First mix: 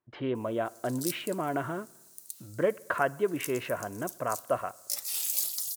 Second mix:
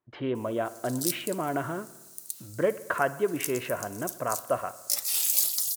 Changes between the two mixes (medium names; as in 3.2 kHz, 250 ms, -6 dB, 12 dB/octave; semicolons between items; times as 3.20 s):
speech: send +8.5 dB; background +5.5 dB